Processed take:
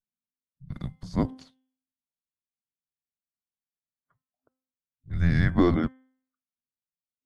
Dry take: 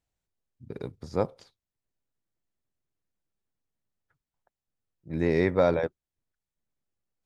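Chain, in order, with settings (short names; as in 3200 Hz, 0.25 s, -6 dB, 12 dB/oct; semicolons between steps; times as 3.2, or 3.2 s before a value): frequency shift -260 Hz; spectral noise reduction 20 dB; de-hum 259.8 Hz, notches 13; gain +2 dB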